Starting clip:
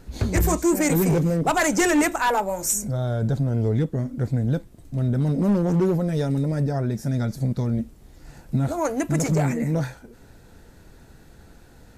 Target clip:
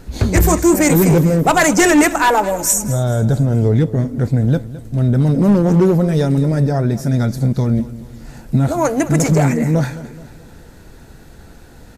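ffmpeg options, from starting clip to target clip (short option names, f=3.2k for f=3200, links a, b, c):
-af "aecho=1:1:214|428|642|856:0.15|0.0703|0.0331|0.0155,volume=8dB"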